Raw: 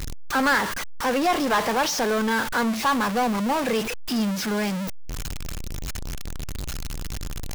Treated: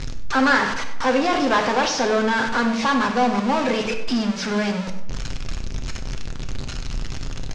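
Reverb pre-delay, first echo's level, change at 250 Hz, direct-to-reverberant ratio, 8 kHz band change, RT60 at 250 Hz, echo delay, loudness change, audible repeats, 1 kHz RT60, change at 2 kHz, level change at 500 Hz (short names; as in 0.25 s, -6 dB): 8 ms, -13.5 dB, +3.0 dB, 3.5 dB, -1.5 dB, 1.1 s, 97 ms, +3.5 dB, 1, 0.85 s, +3.0 dB, +3.5 dB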